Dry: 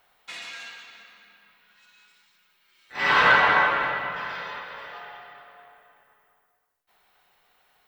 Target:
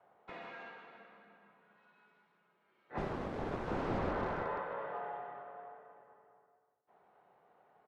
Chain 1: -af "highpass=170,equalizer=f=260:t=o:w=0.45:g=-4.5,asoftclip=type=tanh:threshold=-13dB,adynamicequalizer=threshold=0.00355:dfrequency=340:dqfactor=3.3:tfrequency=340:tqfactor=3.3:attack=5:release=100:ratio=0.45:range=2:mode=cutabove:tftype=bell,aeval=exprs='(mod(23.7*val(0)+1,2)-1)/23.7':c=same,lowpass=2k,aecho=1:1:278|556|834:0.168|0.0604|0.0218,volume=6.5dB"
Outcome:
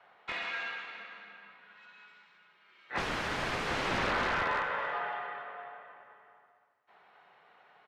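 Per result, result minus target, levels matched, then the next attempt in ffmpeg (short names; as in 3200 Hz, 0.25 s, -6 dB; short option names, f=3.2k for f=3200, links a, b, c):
echo 0.127 s late; 2000 Hz band +7.5 dB; soft clip: distortion -8 dB
-af "highpass=170,equalizer=f=260:t=o:w=0.45:g=-4.5,asoftclip=type=tanh:threshold=-13dB,adynamicequalizer=threshold=0.00355:dfrequency=340:dqfactor=3.3:tfrequency=340:tqfactor=3.3:attack=5:release=100:ratio=0.45:range=2:mode=cutabove:tftype=bell,aeval=exprs='(mod(23.7*val(0)+1,2)-1)/23.7':c=same,lowpass=2k,aecho=1:1:151|302|453:0.168|0.0604|0.0218,volume=6.5dB"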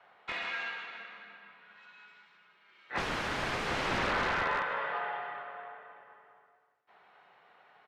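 2000 Hz band +7.5 dB; soft clip: distortion -8 dB
-af "highpass=170,equalizer=f=260:t=o:w=0.45:g=-4.5,asoftclip=type=tanh:threshold=-13dB,adynamicequalizer=threshold=0.00355:dfrequency=340:dqfactor=3.3:tfrequency=340:tqfactor=3.3:attack=5:release=100:ratio=0.45:range=2:mode=cutabove:tftype=bell,aeval=exprs='(mod(23.7*val(0)+1,2)-1)/23.7':c=same,lowpass=680,aecho=1:1:151|302|453:0.168|0.0604|0.0218,volume=6.5dB"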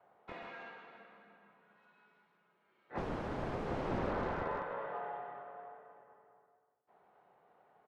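soft clip: distortion -8 dB
-af "highpass=170,equalizer=f=260:t=o:w=0.45:g=-4.5,asoftclip=type=tanh:threshold=-21dB,adynamicequalizer=threshold=0.00355:dfrequency=340:dqfactor=3.3:tfrequency=340:tqfactor=3.3:attack=5:release=100:ratio=0.45:range=2:mode=cutabove:tftype=bell,aeval=exprs='(mod(23.7*val(0)+1,2)-1)/23.7':c=same,lowpass=680,aecho=1:1:151|302|453:0.168|0.0604|0.0218,volume=6.5dB"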